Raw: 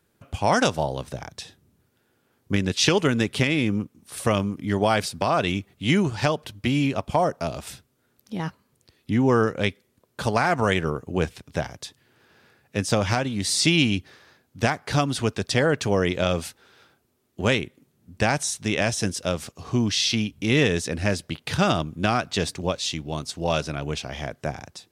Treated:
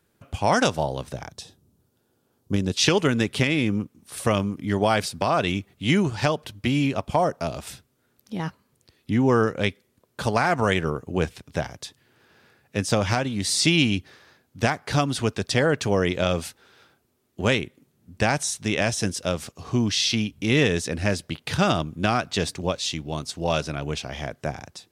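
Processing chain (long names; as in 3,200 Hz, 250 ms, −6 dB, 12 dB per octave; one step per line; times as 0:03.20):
0:01.33–0:02.77: parametric band 2,000 Hz −10.5 dB 1.2 octaves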